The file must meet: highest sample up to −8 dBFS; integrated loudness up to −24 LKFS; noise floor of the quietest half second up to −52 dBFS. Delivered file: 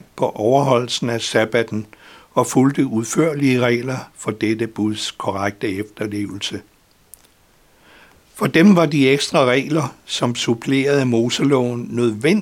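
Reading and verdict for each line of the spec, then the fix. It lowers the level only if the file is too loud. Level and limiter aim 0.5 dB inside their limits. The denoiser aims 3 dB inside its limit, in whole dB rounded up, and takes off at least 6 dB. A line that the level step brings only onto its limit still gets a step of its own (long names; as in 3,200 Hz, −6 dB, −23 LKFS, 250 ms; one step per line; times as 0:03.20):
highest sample −2.0 dBFS: out of spec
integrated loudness −18.5 LKFS: out of spec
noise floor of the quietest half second −54 dBFS: in spec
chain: level −6 dB
brickwall limiter −8.5 dBFS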